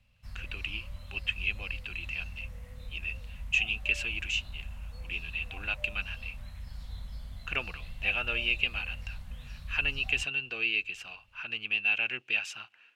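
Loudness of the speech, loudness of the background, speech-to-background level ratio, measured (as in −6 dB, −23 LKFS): −31.5 LKFS, −45.0 LKFS, 13.5 dB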